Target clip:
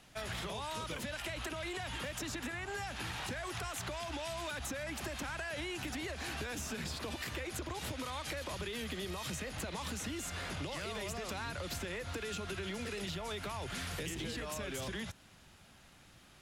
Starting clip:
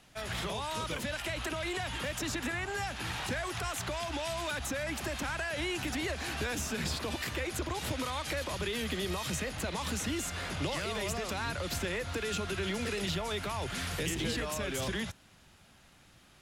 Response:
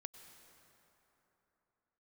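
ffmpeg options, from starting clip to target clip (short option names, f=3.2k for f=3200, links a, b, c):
-af "acompressor=threshold=-37dB:ratio=6"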